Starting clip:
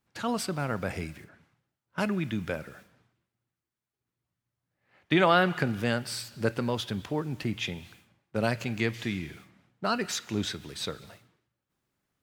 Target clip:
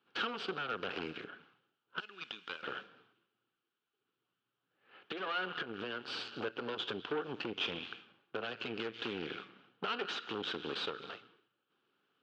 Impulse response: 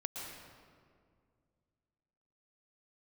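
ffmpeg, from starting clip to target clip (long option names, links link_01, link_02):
-filter_complex "[0:a]asettb=1/sr,asplit=3[link_01][link_02][link_03];[link_01]atrim=end=2.004[link_04];[link_02]atrim=start=2:end=2.63,asetpts=PTS-STARTPTS,afade=type=in:duration=0.004:curve=qsin,afade=type=out:start_time=0.626:duration=0.004:curve=qsin,aderivative[link_05];[link_03]atrim=start=2.626[link_06];[link_04][link_05]acrossfade=duration=0.004:curve1=hsin:curve2=qsin[link_07];[link_07][link_06]acrossfade=duration=0.004:curve1=qsin:curve2=hsin,acompressor=threshold=-35dB:ratio=10,alimiter=level_in=4.5dB:limit=-24dB:level=0:latency=1:release=249,volume=-4.5dB,asettb=1/sr,asplit=3[link_08][link_09][link_10];[link_08]atrim=end=5.214[link_11];[link_09]atrim=start=5.21:end=6.33,asetpts=PTS-STARTPTS,afade=type=in:duration=0.004:curve=qsin,afade=type=out:start_time=1.116:duration=0.004:curve=qsin,aeval=exprs='max(val(0),0)':channel_layout=same[link_12];[link_10]atrim=start=6.326[link_13];[link_11][link_12]acrossfade=duration=0.004:curve1=hsin:curve2=qsin[link_14];[link_14][link_13]acrossfade=duration=0.004:curve1=qsin:curve2=hsin,aeval=exprs='0.0376*(cos(1*acos(clip(val(0)/0.0376,-1,1)))-cos(1*PI/2))+0.00376*(cos(5*acos(clip(val(0)/0.0376,-1,1)))-cos(5*PI/2))+0.015*(cos(6*acos(clip(val(0)/0.0376,-1,1)))-cos(6*PI/2))':channel_layout=same,highpass=330,equalizer=frequency=430:width_type=q:width=4:gain=5,equalizer=frequency=620:width_type=q:width=4:gain=-9,equalizer=frequency=940:width_type=q:width=4:gain=-4,equalizer=frequency=1400:width_type=q:width=4:gain=6,equalizer=frequency=2000:width_type=q:width=4:gain=-10,equalizer=frequency=3000:width_type=q:width=4:gain=7,lowpass=frequency=3700:width=0.5412,lowpass=frequency=3700:width=1.3066,volume=2dB"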